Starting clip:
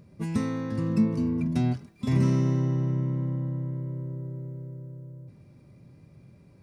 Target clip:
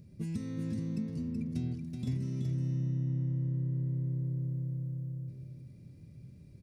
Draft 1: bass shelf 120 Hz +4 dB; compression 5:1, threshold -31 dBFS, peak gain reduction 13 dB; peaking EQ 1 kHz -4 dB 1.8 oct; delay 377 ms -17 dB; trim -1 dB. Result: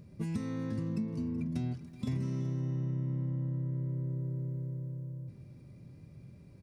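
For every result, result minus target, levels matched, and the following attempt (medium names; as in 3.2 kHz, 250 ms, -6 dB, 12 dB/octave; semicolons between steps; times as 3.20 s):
1 kHz band +10.5 dB; echo-to-direct -12 dB
bass shelf 120 Hz +4 dB; compression 5:1, threshold -31 dBFS, peak gain reduction 13 dB; peaking EQ 1 kHz -16 dB 1.8 oct; delay 377 ms -17 dB; trim -1 dB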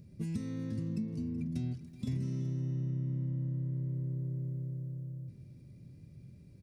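echo-to-direct -12 dB
bass shelf 120 Hz +4 dB; compression 5:1, threshold -31 dBFS, peak gain reduction 13 dB; peaking EQ 1 kHz -16 dB 1.8 oct; delay 377 ms -5 dB; trim -1 dB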